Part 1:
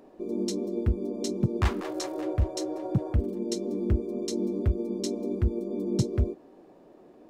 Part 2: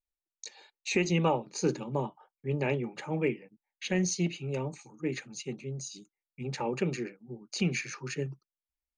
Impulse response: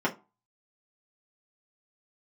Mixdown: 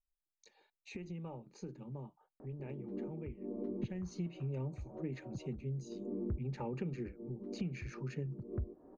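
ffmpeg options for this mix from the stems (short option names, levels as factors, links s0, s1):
-filter_complex "[0:a]lowpass=f=1500:w=0.5412,lowpass=f=1500:w=1.3066,lowshelf=f=140:g=10,acompressor=threshold=0.0631:ratio=5,adelay=2400,volume=0.708[s0];[1:a]aemphasis=mode=reproduction:type=riaa,acompressor=threshold=0.0631:ratio=6,volume=0.668,afade=t=in:st=3.76:d=0.51:silence=0.334965,asplit=2[s1][s2];[s2]apad=whole_len=427528[s3];[s0][s3]sidechaincompress=threshold=0.00355:ratio=12:attack=5.9:release=193[s4];[s4][s1]amix=inputs=2:normalize=0,acompressor=threshold=0.00355:ratio=1.5"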